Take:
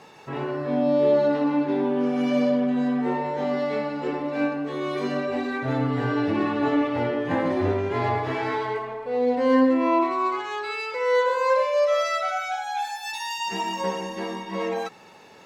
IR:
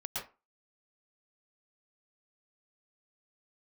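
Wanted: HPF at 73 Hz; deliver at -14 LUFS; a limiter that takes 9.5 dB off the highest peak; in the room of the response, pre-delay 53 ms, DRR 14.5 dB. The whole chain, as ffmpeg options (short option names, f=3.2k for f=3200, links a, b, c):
-filter_complex "[0:a]highpass=73,alimiter=limit=-18dB:level=0:latency=1,asplit=2[a][b];[1:a]atrim=start_sample=2205,adelay=53[c];[b][c]afir=irnorm=-1:irlink=0,volume=-16.5dB[d];[a][d]amix=inputs=2:normalize=0,volume=12.5dB"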